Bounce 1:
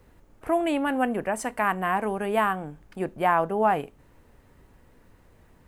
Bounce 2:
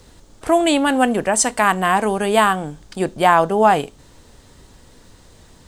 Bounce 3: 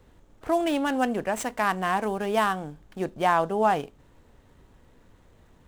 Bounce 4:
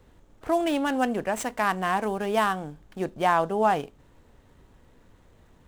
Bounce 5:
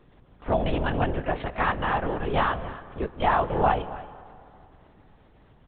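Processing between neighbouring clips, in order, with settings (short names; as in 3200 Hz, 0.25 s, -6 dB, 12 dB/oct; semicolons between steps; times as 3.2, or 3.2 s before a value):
band shelf 5400 Hz +13 dB; gain +8.5 dB
median filter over 9 samples; gain -8.5 dB
nothing audible
echo 0.275 s -17 dB; LPC vocoder at 8 kHz whisper; on a send at -17.5 dB: reverb RT60 2.7 s, pre-delay 0.107 s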